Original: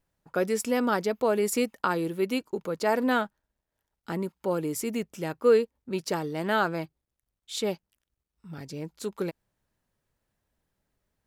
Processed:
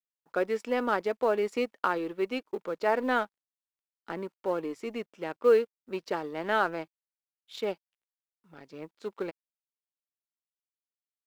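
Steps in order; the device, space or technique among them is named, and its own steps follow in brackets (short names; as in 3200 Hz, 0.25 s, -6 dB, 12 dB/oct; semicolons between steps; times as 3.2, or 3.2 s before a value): phone line with mismatched companding (BPF 310–3200 Hz; G.711 law mismatch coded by A)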